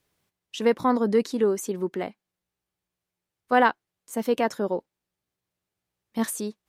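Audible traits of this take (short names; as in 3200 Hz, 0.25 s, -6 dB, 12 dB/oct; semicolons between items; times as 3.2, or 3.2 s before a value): noise floor -87 dBFS; spectral tilt -4.0 dB/oct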